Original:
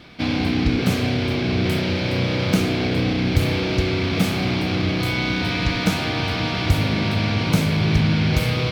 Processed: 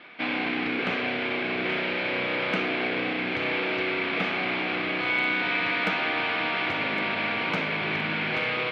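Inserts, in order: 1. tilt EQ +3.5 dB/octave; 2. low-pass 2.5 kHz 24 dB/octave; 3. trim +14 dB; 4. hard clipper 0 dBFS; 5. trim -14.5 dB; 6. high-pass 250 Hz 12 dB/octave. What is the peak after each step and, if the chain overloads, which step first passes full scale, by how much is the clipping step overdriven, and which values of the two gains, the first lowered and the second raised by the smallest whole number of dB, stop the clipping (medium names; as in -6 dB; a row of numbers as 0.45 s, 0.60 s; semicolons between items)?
-4.0 dBFS, -9.0 dBFS, +5.0 dBFS, 0.0 dBFS, -14.5 dBFS, -11.0 dBFS; step 3, 5.0 dB; step 3 +9 dB, step 5 -9.5 dB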